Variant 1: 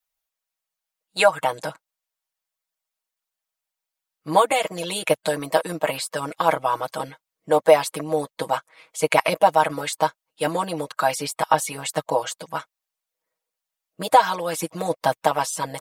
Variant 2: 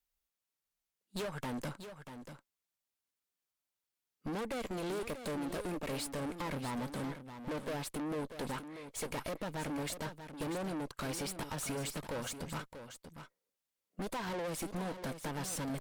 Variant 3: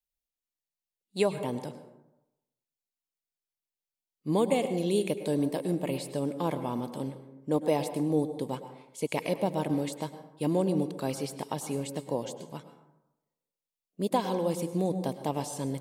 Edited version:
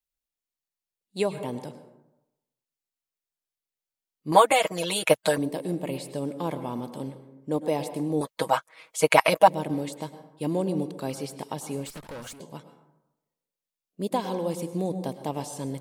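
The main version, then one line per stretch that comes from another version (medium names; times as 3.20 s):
3
4.32–5.38 s: from 1
8.21–9.48 s: from 1
11.86–12.40 s: from 2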